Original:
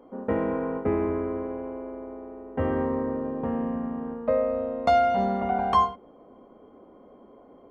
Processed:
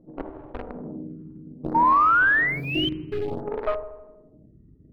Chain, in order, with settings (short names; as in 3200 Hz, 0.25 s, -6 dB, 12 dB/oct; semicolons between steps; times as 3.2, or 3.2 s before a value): bell 3600 Hz -5 dB 1.4 oct; notches 50/100/150/200/250 Hz; buzz 50 Hz, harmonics 5, -53 dBFS -2 dB/oct; one-sided clip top -31.5 dBFS; granular stretch 0.64×, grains 0.101 s; painted sound rise, 1.74–2.88, 1500–5300 Hz -20 dBFS; pitch shift -9 st; in parallel at -3 dB: bit-crush 4-bit; on the sum: air absorption 410 m; on a send: dark delay 80 ms, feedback 57%, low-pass 770 Hz, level -7 dB; on the sum: photocell phaser 0.59 Hz